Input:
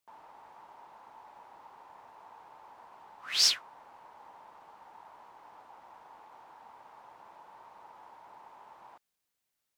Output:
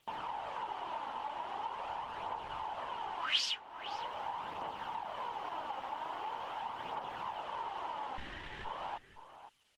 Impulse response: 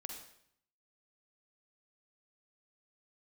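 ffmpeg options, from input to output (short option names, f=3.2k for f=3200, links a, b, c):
-filter_complex "[0:a]acontrast=84,asettb=1/sr,asplit=3[a][b][c];[a]atrim=end=1.664[d];[b]atrim=start=1.66:end=2.63,asetpts=PTS-STARTPTS,afade=t=in:d=0.004:c=qsin,afade=t=out:st=0.966:d=0.004:c=qsin,asubboost=boost=11:cutoff=99[e];[c]atrim=start=2.626[f];[d][e]acrossfade=d=0.004:c1=hsin:c2=qsin[g];[g][f]acrossfade=d=0.004:c1=qsin:c2=hsin,asettb=1/sr,asplit=3[h][i][j];[h]atrim=end=8.184[k];[i]atrim=start=8.18:end=8.65,asetpts=PTS-STARTPTS,afade=t=in:d=0.004:c=qsin,afade=t=out:st=0.466:d=0.004:c=qsin,aeval=exprs='abs(val(0))':c=same[l];[j]atrim=start=8.646[m];[k][l]acrossfade=d=0.004:c1=hsin:c2=qsin[n];[n][m]acrossfade=d=0.004:c1=qsin:c2=hsin,lowpass=f=4k:p=1,asettb=1/sr,asplit=3[o][p][q];[o]atrim=end=3.674[r];[p]atrim=start=3.67:end=4.18,asetpts=PTS-STARTPTS,afade=t=in:d=0.004:c=qsin,afade=t=out:st=0.506:d=0.004:c=qsin,bandreject=f=393.2:t=h:w=4,bandreject=f=786.4:t=h:w=4,bandreject=f=1.1796k:t=h:w=4,bandreject=f=1.5728k:t=h:w=4,bandreject=f=1.966k:t=h:w=4,bandreject=f=2.3592k:t=h:w=4[s];[q]atrim=start=4.176[t];[r][s]acrossfade=d=0.004:c1=hsin:c2=qsin[u];[u][t]acrossfade=d=0.004:c1=qsin:c2=hsin,aphaser=in_gain=1:out_gain=1:delay=3.9:decay=0.44:speed=0.43:type=triangular,acompressor=threshold=-44dB:ratio=8,equalizer=f=3k:t=o:w=0.38:g=13,asplit=2[v][w];[w]adelay=513.1,volume=-12dB,highshelf=f=4k:g=-11.5[x];[v][x]amix=inputs=2:normalize=0,volume=8dB" -ar 48000 -c:a libopus -b:a 16k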